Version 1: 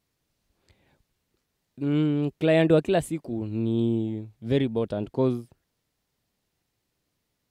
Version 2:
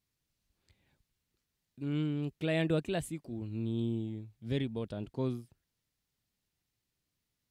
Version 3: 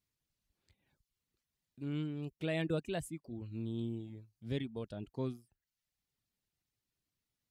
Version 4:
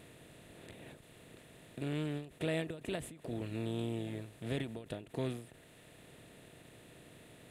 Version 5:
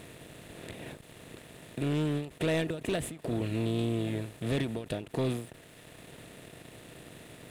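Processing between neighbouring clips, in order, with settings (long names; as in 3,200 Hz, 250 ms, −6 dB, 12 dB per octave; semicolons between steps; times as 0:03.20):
parametric band 570 Hz −7.5 dB 2.5 octaves; level −5.5 dB
reverb reduction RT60 0.58 s; level −3.5 dB
compressor on every frequency bin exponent 0.4; every ending faded ahead of time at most 130 dB per second; level −2.5 dB
leveller curve on the samples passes 2; level +1.5 dB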